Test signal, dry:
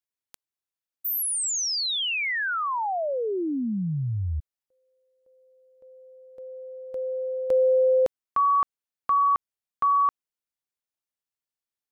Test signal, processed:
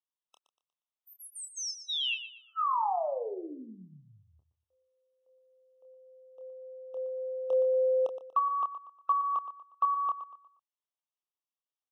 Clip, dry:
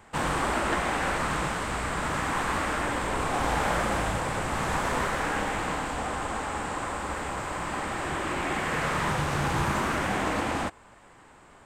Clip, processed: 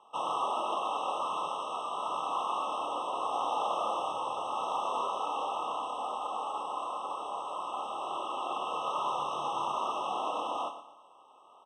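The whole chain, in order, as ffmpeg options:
-filter_complex "[0:a]highpass=750,lowpass=6.5k,highshelf=f=2.7k:g=-8.5,asplit=2[a][b];[b]adelay=27,volume=-6.5dB[c];[a][c]amix=inputs=2:normalize=0,asplit=2[d][e];[e]aecho=0:1:119|238|357|476:0.266|0.0931|0.0326|0.0114[f];[d][f]amix=inputs=2:normalize=0,afftfilt=real='re*eq(mod(floor(b*sr/1024/1300),2),0)':imag='im*eq(mod(floor(b*sr/1024/1300),2),0)':win_size=1024:overlap=0.75"

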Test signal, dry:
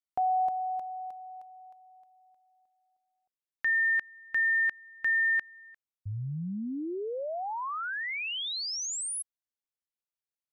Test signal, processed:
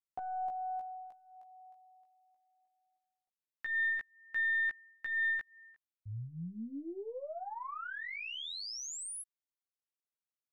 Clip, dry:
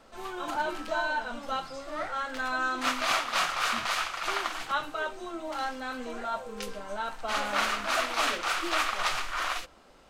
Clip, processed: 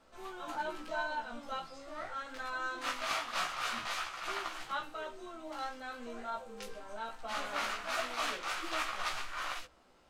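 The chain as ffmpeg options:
-af "aeval=exprs='0.237*(cos(1*acos(clip(val(0)/0.237,-1,1)))-cos(1*PI/2))+0.00944*(cos(4*acos(clip(val(0)/0.237,-1,1)))-cos(4*PI/2))':c=same,flanger=delay=15.5:depth=2.3:speed=0.22,volume=-5dB"

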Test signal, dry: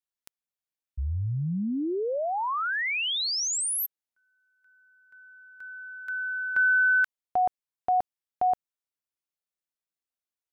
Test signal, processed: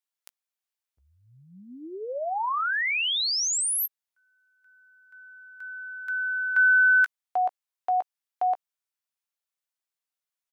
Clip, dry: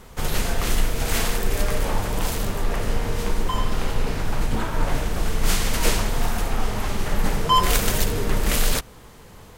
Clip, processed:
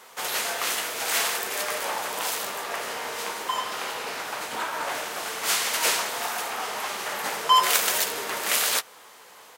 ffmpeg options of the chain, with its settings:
-filter_complex "[0:a]highpass=690,asplit=2[a][b];[b]adelay=16,volume=-13dB[c];[a][c]amix=inputs=2:normalize=0,volume=2dB"

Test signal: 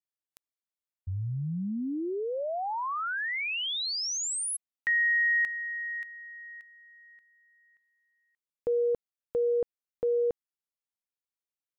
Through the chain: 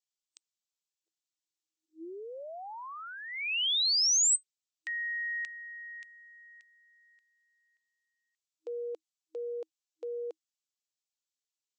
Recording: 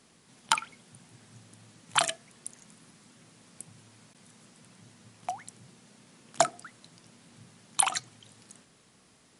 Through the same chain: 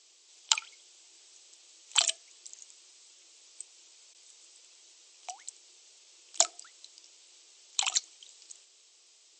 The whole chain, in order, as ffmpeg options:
-af "aexciter=amount=7.2:drive=2.1:freq=2.5k,afftfilt=real='re*between(b*sr/4096,320,8200)':imag='im*between(b*sr/4096,320,8200)':win_size=4096:overlap=0.75,volume=-10.5dB"

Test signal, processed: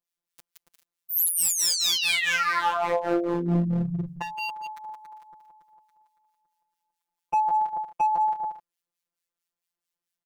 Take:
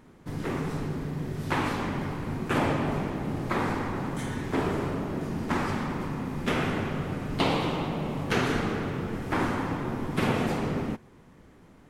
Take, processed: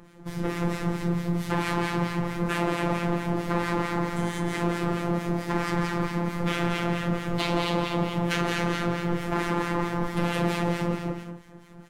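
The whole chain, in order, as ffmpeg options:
-filter_complex "[0:a]asplit=2[a][b];[b]alimiter=limit=-24dB:level=0:latency=1,volume=2dB[c];[a][c]amix=inputs=2:normalize=0,aecho=1:1:170|280.5|352.3|399|429.4:0.631|0.398|0.251|0.158|0.1,acrossover=split=1400[d][e];[d]aeval=exprs='val(0)*(1-0.7/2+0.7/2*cos(2*PI*4.5*n/s))':c=same[f];[e]aeval=exprs='val(0)*(1-0.7/2-0.7/2*cos(2*PI*4.5*n/s))':c=same[g];[f][g]amix=inputs=2:normalize=0,asoftclip=type=hard:threshold=-20.5dB,afftfilt=real='hypot(re,im)*cos(PI*b)':imag='0':win_size=1024:overlap=0.75,volume=3dB"

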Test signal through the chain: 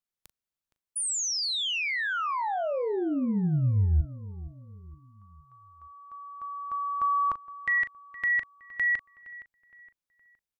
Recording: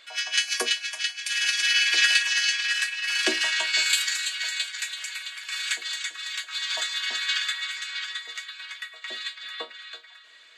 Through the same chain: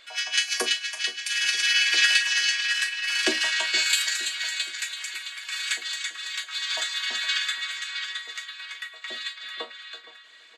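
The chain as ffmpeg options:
-filter_complex "[0:a]lowshelf=f=140:g=10,asplit=2[a][b];[b]adelay=39,volume=-13dB[c];[a][c]amix=inputs=2:normalize=0,asplit=2[d][e];[e]adelay=466,lowpass=f=2.5k:p=1,volume=-16.5dB,asplit=2[f][g];[g]adelay=466,lowpass=f=2.5k:p=1,volume=0.44,asplit=2[h][i];[i]adelay=466,lowpass=f=2.5k:p=1,volume=0.44,asplit=2[j][k];[k]adelay=466,lowpass=f=2.5k:p=1,volume=0.44[l];[f][h][j][l]amix=inputs=4:normalize=0[m];[d][m]amix=inputs=2:normalize=0"

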